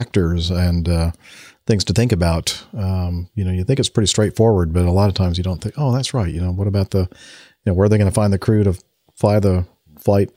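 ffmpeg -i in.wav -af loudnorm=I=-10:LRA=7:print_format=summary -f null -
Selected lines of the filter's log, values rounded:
Input Integrated:    -18.0 LUFS
Input True Peak:      -2.5 dBTP
Input LRA:             1.6 LU
Input Threshold:     -28.4 LUFS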